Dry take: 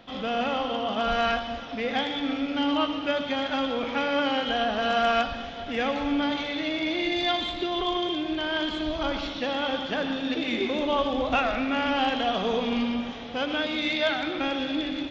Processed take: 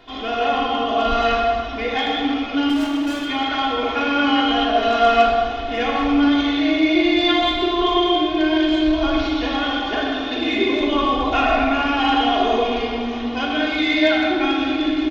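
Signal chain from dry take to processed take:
comb filter 2.8 ms, depth 90%
0:02.69–0:03.26: gain into a clipping stage and back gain 30 dB
convolution reverb RT60 1.9 s, pre-delay 4 ms, DRR −2 dB

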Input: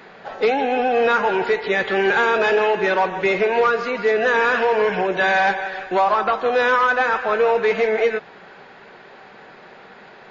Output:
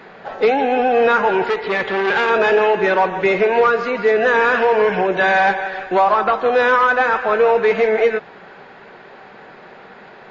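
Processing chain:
high-shelf EQ 3,500 Hz −7 dB
0:01.45–0:02.30: saturating transformer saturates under 1,300 Hz
level +3.5 dB

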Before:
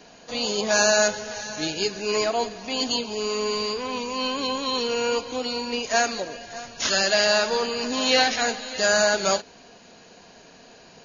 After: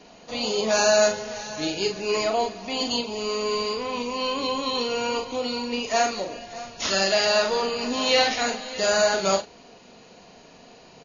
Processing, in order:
high-shelf EQ 5,700 Hz −7 dB
notch filter 1,600 Hz, Q 6.7
double-tracking delay 41 ms −6 dB

